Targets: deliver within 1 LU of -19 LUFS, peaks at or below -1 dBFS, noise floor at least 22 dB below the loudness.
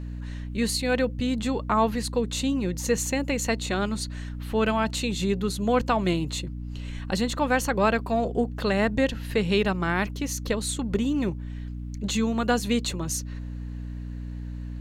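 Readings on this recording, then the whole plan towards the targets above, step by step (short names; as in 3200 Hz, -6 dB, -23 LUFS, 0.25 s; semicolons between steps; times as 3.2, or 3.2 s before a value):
hum 60 Hz; harmonics up to 300 Hz; hum level -32 dBFS; loudness -26.5 LUFS; peak -9.5 dBFS; loudness target -19.0 LUFS
-> de-hum 60 Hz, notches 5; gain +7.5 dB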